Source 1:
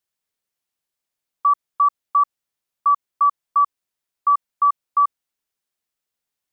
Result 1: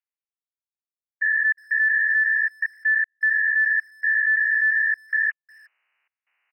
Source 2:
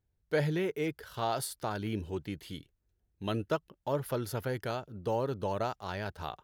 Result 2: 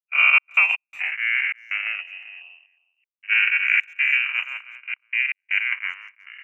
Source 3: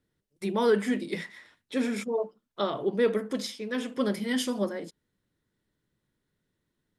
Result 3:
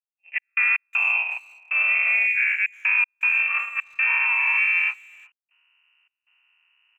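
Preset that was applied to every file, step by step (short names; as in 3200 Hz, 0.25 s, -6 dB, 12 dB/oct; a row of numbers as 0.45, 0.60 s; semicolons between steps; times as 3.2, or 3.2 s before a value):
spectral dilation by 0.48 s; gate -22 dBFS, range -57 dB; inverted band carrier 2900 Hz; Butterworth band-pass 1800 Hz, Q 0.57; reverse; upward compressor, threshold -18 dBFS; reverse; step gate "xx.x.xxx.xxx" 79 bpm -60 dB; speakerphone echo 0.36 s, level -22 dB; limiter -14 dBFS; bell 2100 Hz +8.5 dB 1.1 oct; match loudness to -20 LUFS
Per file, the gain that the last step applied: -8.0, +1.5, -5.0 dB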